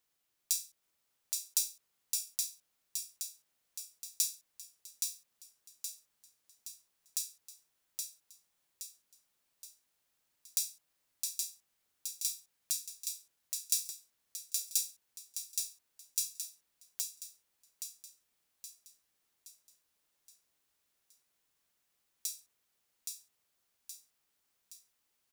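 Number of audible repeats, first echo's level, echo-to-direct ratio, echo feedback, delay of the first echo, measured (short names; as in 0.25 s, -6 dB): 6, -4.0 dB, -3.0 dB, 50%, 0.821 s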